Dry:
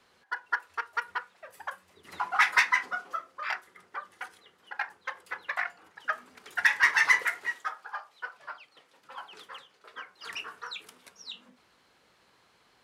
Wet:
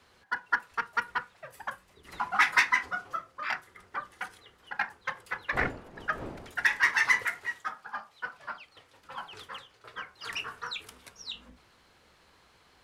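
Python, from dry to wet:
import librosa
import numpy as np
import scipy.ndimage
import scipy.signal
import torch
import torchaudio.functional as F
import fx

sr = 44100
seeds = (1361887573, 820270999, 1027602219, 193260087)

y = fx.octave_divider(x, sr, octaves=2, level_db=0.0)
y = fx.dmg_wind(y, sr, seeds[0], corner_hz=550.0, level_db=-37.0, at=(5.52, 6.77), fade=0.02)
y = fx.rider(y, sr, range_db=5, speed_s=2.0)
y = F.gain(torch.from_numpy(y), -2.5).numpy()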